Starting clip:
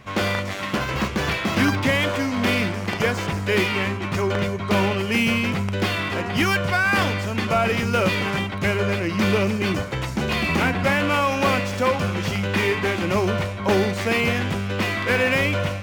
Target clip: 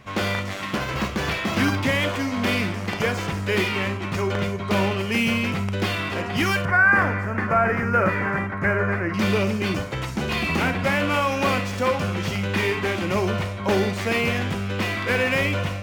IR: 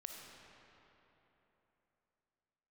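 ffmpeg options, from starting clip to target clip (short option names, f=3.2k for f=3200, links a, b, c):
-filter_complex "[0:a]asettb=1/sr,asplit=3[a][b][c];[a]atrim=end=6.654[d];[b]atrim=start=6.65:end=9.14,asetpts=PTS-STARTPTS,afade=t=in:d=0.004:c=qsin,afade=t=out:st=2.486:d=0.004:c=qsin,highshelf=f=2.4k:t=q:w=3:g=-12[e];[c]atrim=start=9.136[f];[d][e]acrossfade=d=0.004:c1=hsin:c2=qsin[g];[g][f]acrossfade=d=0.004:c1=qsin:c2=hsin[h];[1:a]atrim=start_sample=2205,atrim=end_sample=3087[i];[h][i]afir=irnorm=-1:irlink=0,volume=4dB"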